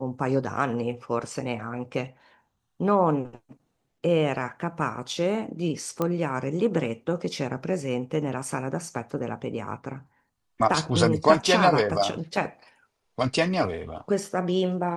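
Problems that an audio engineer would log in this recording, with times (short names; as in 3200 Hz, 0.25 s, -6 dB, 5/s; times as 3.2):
6.02 pop -13 dBFS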